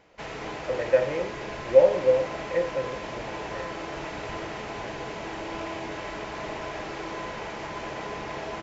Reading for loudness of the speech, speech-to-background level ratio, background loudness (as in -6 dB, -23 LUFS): -24.5 LUFS, 10.5 dB, -35.0 LUFS